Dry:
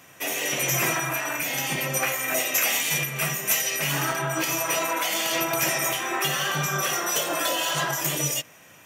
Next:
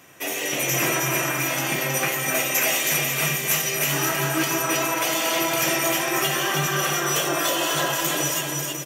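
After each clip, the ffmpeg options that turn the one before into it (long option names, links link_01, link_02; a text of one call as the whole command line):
ffmpeg -i in.wav -filter_complex "[0:a]equalizer=frequency=350:width_type=o:width=0.62:gain=5,asplit=2[link_01][link_02];[link_02]aecho=0:1:320|544|700.8|810.6|887.4:0.631|0.398|0.251|0.158|0.1[link_03];[link_01][link_03]amix=inputs=2:normalize=0" out.wav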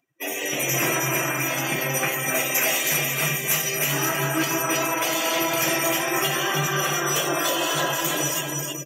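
ffmpeg -i in.wav -af "acompressor=mode=upward:threshold=-42dB:ratio=2.5,afftdn=noise_reduction=35:noise_floor=-35" out.wav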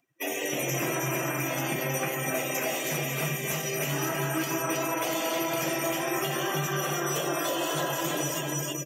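ffmpeg -i in.wav -filter_complex "[0:a]acrossover=split=900|7600[link_01][link_02][link_03];[link_01]acompressor=threshold=-28dB:ratio=4[link_04];[link_02]acompressor=threshold=-34dB:ratio=4[link_05];[link_03]acompressor=threshold=-39dB:ratio=4[link_06];[link_04][link_05][link_06]amix=inputs=3:normalize=0" out.wav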